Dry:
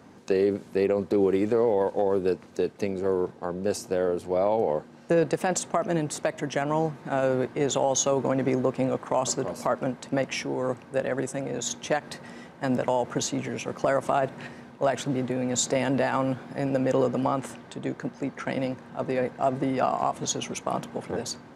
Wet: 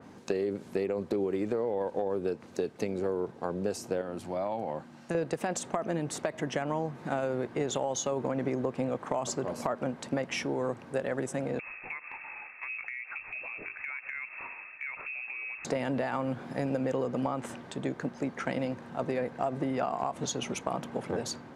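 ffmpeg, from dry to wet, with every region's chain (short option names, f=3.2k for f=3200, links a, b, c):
-filter_complex "[0:a]asettb=1/sr,asplit=3[a][b][c];[a]atrim=end=4.014[d];[b]atrim=start=4.01:end=5.15,asetpts=PTS-STARTPTS,afade=t=in:d=0.004:c=qsin,afade=t=out:st=1.136:d=0.004:c=qsin,highpass=87,equalizer=f=440:t=o:w=0.44:g=-13.5,acompressor=threshold=-34dB:ratio=1.5:attack=3.2:release=140:knee=1:detection=peak[e];[c]atrim=start=5.146[f];[d][e]acrossfade=d=0.004:c1=hsin:c2=qsin[g];[g][f]acrossfade=d=0.004:c1=qsin:c2=hsin,asettb=1/sr,asplit=3[h][i][j];[h]atrim=end=11.594[k];[i]atrim=start=11.59:end=15.65,asetpts=PTS-STARTPTS,afade=t=in:d=0.004:c=qsin,afade=t=out:st=4.056:d=0.004:c=qsin,lowpass=f=2.4k:t=q:w=0.5098,lowpass=f=2.4k:t=q:w=0.6013,lowpass=f=2.4k:t=q:w=0.9,lowpass=f=2.4k:t=q:w=2.563,afreqshift=-2800,acompressor=threshold=-36dB:ratio=5:attack=3.2:release=140:knee=1:detection=peak,bandreject=f=50:t=h:w=6,bandreject=f=100:t=h:w=6,bandreject=f=150:t=h:w=6,bandreject=f=200:t=h:w=6,bandreject=f=250:t=h:w=6,bandreject=f=300:t=h:w=6,bandreject=f=350:t=h:w=6,bandreject=f=400:t=h:w=6,bandreject=f=450:t=h:w=6[l];[j]atrim=start=15.646[m];[k][l]acrossfade=d=0.004:c1=hsin:c2=qsin[n];[n][m]acrossfade=d=0.004:c1=qsin:c2=hsin,acompressor=threshold=-27dB:ratio=6,adynamicequalizer=threshold=0.00316:dfrequency=3700:dqfactor=0.7:tfrequency=3700:tqfactor=0.7:attack=5:release=100:ratio=0.375:range=2:mode=cutabove:tftype=highshelf"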